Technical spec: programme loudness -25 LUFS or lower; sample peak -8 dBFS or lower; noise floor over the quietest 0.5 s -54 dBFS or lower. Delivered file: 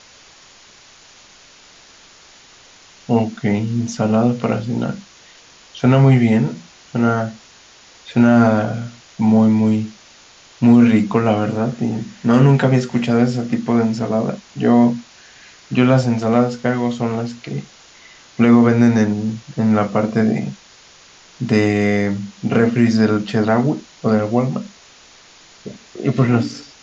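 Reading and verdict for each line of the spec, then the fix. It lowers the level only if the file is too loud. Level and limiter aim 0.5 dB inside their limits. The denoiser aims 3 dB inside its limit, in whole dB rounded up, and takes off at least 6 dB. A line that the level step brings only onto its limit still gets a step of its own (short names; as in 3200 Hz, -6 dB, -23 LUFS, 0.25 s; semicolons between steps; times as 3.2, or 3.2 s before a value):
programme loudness -17.0 LUFS: fail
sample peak -1.5 dBFS: fail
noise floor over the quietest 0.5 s -46 dBFS: fail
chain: gain -8.5 dB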